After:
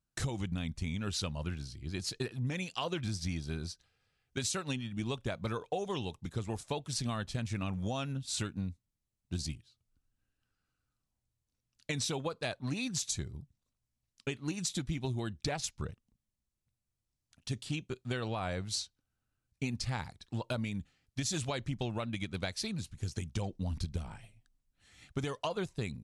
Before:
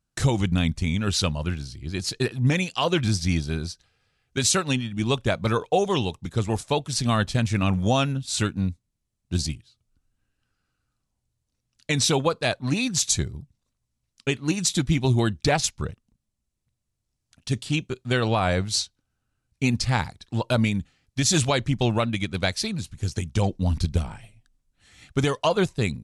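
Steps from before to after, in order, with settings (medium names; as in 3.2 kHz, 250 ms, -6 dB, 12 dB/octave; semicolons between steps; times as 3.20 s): compression, threshold -24 dBFS, peak gain reduction 8.5 dB; trim -7.5 dB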